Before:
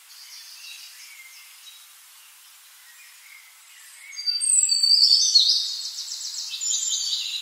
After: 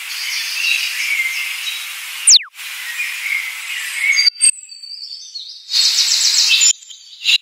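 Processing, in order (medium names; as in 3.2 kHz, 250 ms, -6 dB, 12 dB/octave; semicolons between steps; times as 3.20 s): painted sound fall, 2.27–2.49 s, 1–10 kHz -22 dBFS; peaking EQ 2.4 kHz +14.5 dB 0.93 oct; inverted gate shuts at -13 dBFS, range -33 dB; loudness maximiser +17 dB; trim -1 dB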